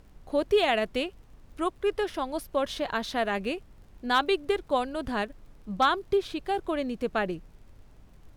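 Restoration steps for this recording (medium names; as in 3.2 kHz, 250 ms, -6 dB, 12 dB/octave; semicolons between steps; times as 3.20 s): clip repair -13.5 dBFS; de-click; noise print and reduce 20 dB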